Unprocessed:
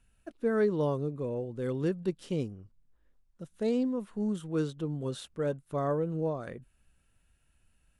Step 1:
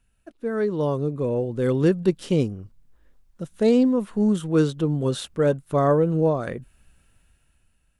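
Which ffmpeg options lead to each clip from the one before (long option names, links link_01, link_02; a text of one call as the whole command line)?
ffmpeg -i in.wav -af "dynaudnorm=framelen=220:gausssize=9:maxgain=11dB" out.wav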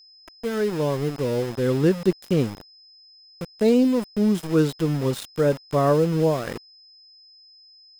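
ffmpeg -i in.wav -af "aeval=exprs='val(0)*gte(abs(val(0)),0.0299)':channel_layout=same,aeval=exprs='val(0)+0.00355*sin(2*PI*5100*n/s)':channel_layout=same" out.wav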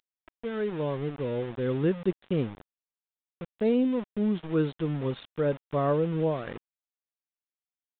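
ffmpeg -i in.wav -af "aresample=8000,aresample=44100,volume=-6.5dB" out.wav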